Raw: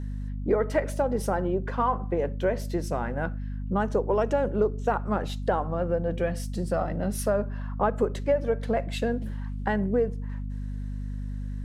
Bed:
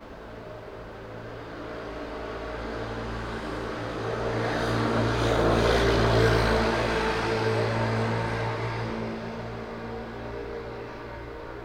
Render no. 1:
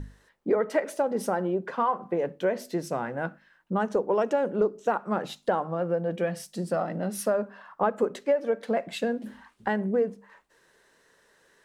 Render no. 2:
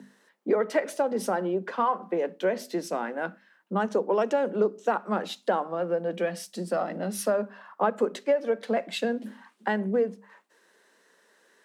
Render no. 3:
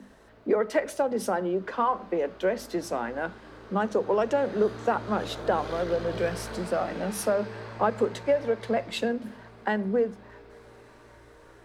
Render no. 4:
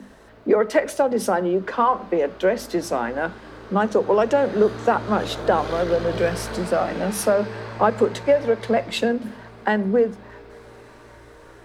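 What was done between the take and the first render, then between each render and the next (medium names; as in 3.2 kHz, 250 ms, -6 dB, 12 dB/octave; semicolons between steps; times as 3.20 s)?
hum notches 50/100/150/200/250 Hz
steep high-pass 180 Hz 72 dB/octave; dynamic bell 3.9 kHz, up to +4 dB, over -49 dBFS, Q 0.79
add bed -14.5 dB
trim +6.5 dB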